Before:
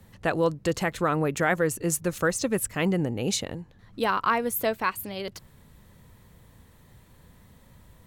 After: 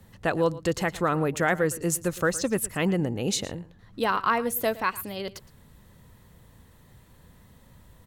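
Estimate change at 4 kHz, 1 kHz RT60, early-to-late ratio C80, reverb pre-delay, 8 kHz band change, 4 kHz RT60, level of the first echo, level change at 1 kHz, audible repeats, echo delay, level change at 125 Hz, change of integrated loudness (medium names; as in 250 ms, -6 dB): 0.0 dB, no reverb, no reverb, no reverb, 0.0 dB, no reverb, -18.5 dB, 0.0 dB, 1, 114 ms, 0.0 dB, 0.0 dB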